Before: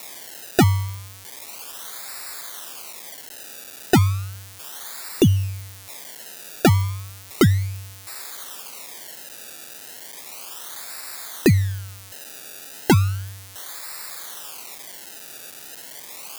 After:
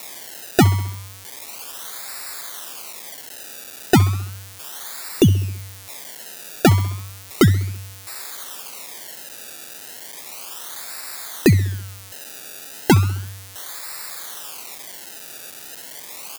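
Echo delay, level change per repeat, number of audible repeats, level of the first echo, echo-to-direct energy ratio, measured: 66 ms, -4.5 dB, 4, -20.0 dB, -18.0 dB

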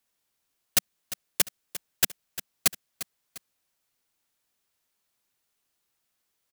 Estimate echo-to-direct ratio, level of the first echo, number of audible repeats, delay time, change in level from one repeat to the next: -13.5 dB, -14.0 dB, 2, 0.35 s, -8.0 dB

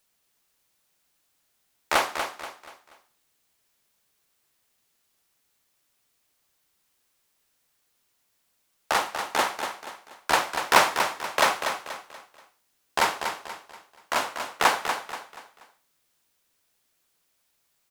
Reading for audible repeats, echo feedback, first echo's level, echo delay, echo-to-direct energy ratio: 4, 37%, -7.5 dB, 0.24 s, -7.0 dB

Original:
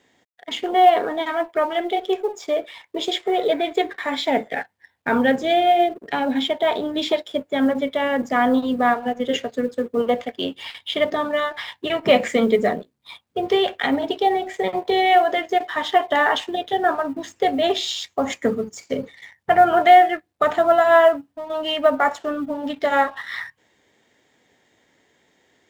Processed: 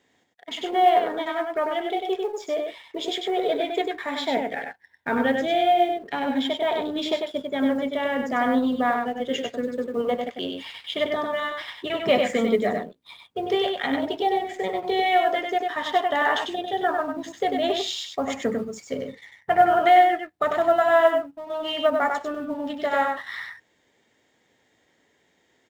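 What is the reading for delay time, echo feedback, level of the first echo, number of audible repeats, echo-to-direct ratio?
97 ms, no steady repeat, -4.5 dB, 1, -4.5 dB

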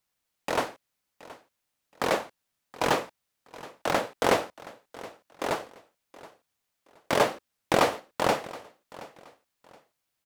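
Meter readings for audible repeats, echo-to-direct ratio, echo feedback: 2, -18.5 dB, 28%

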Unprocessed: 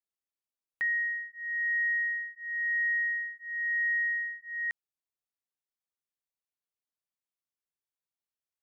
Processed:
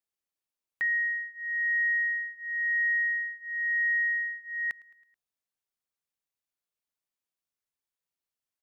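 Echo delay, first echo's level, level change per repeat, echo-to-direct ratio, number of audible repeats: 0.108 s, -24.0 dB, -4.5 dB, -22.5 dB, 3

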